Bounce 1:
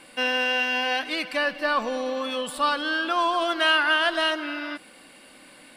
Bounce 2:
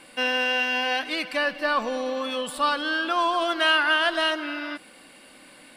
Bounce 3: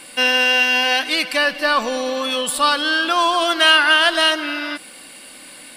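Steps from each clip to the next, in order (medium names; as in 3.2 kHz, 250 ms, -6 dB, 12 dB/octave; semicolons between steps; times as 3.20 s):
no audible change
treble shelf 3.4 kHz +11 dB; trim +5 dB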